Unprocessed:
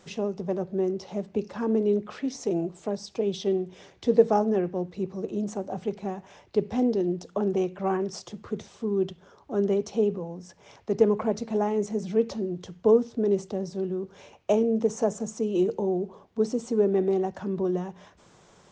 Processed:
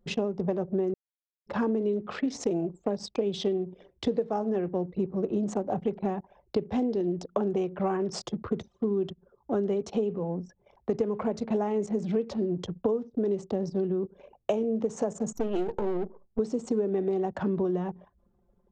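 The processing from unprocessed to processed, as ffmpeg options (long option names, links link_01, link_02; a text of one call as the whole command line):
ffmpeg -i in.wav -filter_complex "[0:a]asettb=1/sr,asplit=3[link_01][link_02][link_03];[link_01]atrim=end=15.334[link_04];[link_02]atrim=start=15.33:end=16.39,asetpts=PTS-STARTPTS,afade=type=in:duration=0.004:curve=qsin,afade=type=out:start_time=1.056:duration=0.004:curve=qsin,aeval=exprs='if(lt(val(0),0),0.251*val(0),val(0))':channel_layout=same[link_05];[link_03]atrim=start=16.386[link_06];[link_04][link_05]acrossfade=duration=0.004:curve1=hsin:curve2=qsin[link_07];[link_07][link_06]acrossfade=duration=0.004:curve1=qsin:curve2=hsin,asplit=3[link_08][link_09][link_10];[link_08]atrim=end=0.94,asetpts=PTS-STARTPTS,afade=type=out:start_time=0.936:duration=0.004:curve=hsin[link_11];[link_09]atrim=start=0.94:end=1.47,asetpts=PTS-STARTPTS,volume=0[link_12];[link_10]atrim=start=1.47,asetpts=PTS-STARTPTS,afade=type=in:duration=0.004:curve=hsin[link_13];[link_11][link_12][link_13]concat=n=3:v=0:a=1,anlmdn=0.1,equalizer=frequency=5900:width=4:gain=-7,acompressor=threshold=-31dB:ratio=12,volume=7dB" out.wav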